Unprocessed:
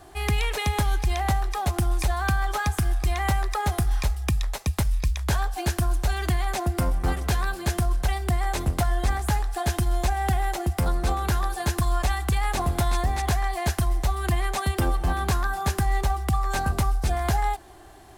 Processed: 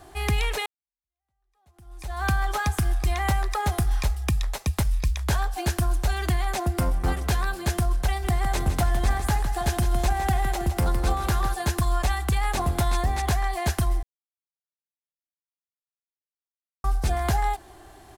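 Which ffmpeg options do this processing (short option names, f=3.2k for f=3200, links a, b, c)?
-filter_complex "[0:a]asplit=3[a][b][c];[a]afade=t=out:st=8.22:d=0.02[d];[b]aecho=1:1:160|320|480|640:0.335|0.137|0.0563|0.0231,afade=t=in:st=8.22:d=0.02,afade=t=out:st=11.53:d=0.02[e];[c]afade=t=in:st=11.53:d=0.02[f];[d][e][f]amix=inputs=3:normalize=0,asplit=4[g][h][i][j];[g]atrim=end=0.66,asetpts=PTS-STARTPTS,afade=t=out:st=0.656:d=0.004:c=hsin[k];[h]atrim=start=0.66:end=14.03,asetpts=PTS-STARTPTS,afade=t=in:d=1.58:c=exp,afade=t=out:st=13.366:d=0.004:c=hsin[l];[i]atrim=start=14.03:end=16.84,asetpts=PTS-STARTPTS,volume=0[m];[j]atrim=start=16.84,asetpts=PTS-STARTPTS,afade=t=in:d=0.004:c=hsin[n];[k][l][m][n]concat=n=4:v=0:a=1"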